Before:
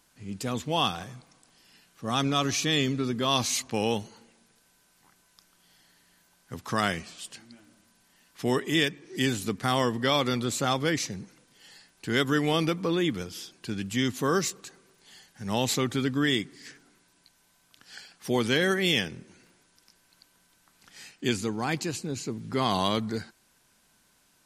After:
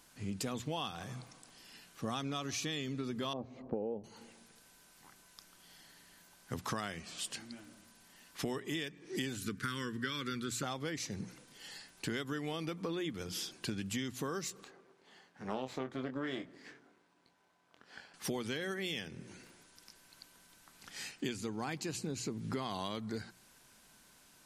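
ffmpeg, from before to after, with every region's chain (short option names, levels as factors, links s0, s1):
-filter_complex "[0:a]asettb=1/sr,asplit=3[s0][s1][s2];[s0]atrim=end=3.334[s3];[s1]atrim=start=3.33:end=4.04,asetpts=PTS-STARTPTS,afade=t=in:d=0.004:c=qsin,afade=t=out:st=0.706:d=0.004:c=qsin,lowpass=f=520:t=q:w=1.9,equalizer=f=110:t=o:w=0.33:g=-9[s4];[s2]atrim=start=4.036[s5];[s3][s4]acrossfade=d=0.004:c1=hsin:c2=qsin[s6];[s6][s5]acrossfade=d=0.004:c1=qsin:c2=hsin,asettb=1/sr,asplit=3[s7][s8][s9];[s7]atrim=end=9.364[s10];[s8]atrim=start=9.36:end=10.63,asetpts=PTS-STARTPTS,afade=t=in:d=0.004:c=qsin,afade=t=out:st=1.266:d=0.004:c=qsin,asuperstop=centerf=710:order=4:qfactor=0.92,equalizer=f=1500:t=o:w=0.25:g=10.5[s11];[s9]atrim=start=10.626[s12];[s10][s11]acrossfade=d=0.004:c1=hsin:c2=qsin[s13];[s13][s12]acrossfade=d=0.004:c1=qsin:c2=hsin,asettb=1/sr,asplit=3[s14][s15][s16];[s14]atrim=end=14.644[s17];[s15]atrim=start=14.64:end=18.14,asetpts=PTS-STARTPTS,afade=t=in:d=0.004:c=qsin,afade=t=out:st=3.496:d=0.004:c=qsin,aeval=exprs='if(lt(val(0),0),0.251*val(0),val(0))':c=same,bandpass=f=590:t=q:w=0.53,asplit=2[s18][s19];[s19]adelay=23,volume=0.398[s20];[s18][s20]amix=inputs=2:normalize=0,atrim=end_sample=154350[s21];[s16]atrim=start=18.136[s22];[s17][s21]acrossfade=d=0.004:c1=hsin:c2=qsin[s23];[s23][s22]acrossfade=d=0.004:c1=qsin:c2=hsin,bandreject=f=60:t=h:w=6,bandreject=f=120:t=h:w=6,bandreject=f=180:t=h:w=6,acompressor=threshold=0.0141:ratio=12,volume=1.33"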